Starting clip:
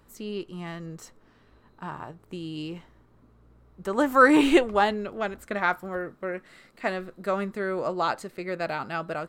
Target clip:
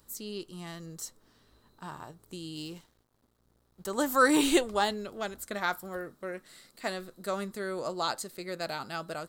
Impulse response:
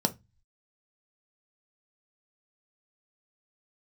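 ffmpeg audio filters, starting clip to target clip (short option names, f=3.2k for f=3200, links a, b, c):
-filter_complex "[0:a]asettb=1/sr,asplit=3[a][b][c];[a]atrim=end=2.564[d];[b]atrim=start=2.56:end=3.91,asetpts=PTS-STARTPTS,afade=t=in:d=0.004:c=qsin,afade=t=out:st=1.346:d=0.004:c=qsin,aeval=exprs='sgn(val(0))*max(abs(val(0))-0.00133,0)':c=same[e];[c]atrim=start=3.906[f];[d][e]acrossfade=d=0.004:c1=hsin:c2=qsin[g];[g][f]acrossfade=d=0.004:c1=qsin:c2=hsin,aexciter=amount=4.2:drive=5.1:freq=3.5k,volume=-6dB"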